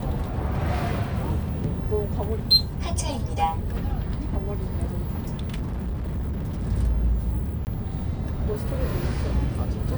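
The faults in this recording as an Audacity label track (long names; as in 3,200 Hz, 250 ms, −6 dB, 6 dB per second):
1.640000	1.640000	drop-out 3.9 ms
5.400000	6.640000	clipping −25 dBFS
7.650000	7.670000	drop-out 19 ms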